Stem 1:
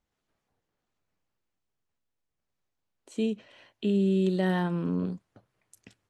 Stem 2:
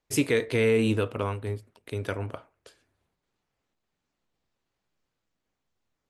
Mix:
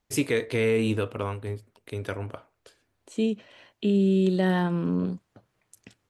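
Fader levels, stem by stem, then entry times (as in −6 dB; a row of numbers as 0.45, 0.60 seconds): +3.0, −1.0 decibels; 0.00, 0.00 seconds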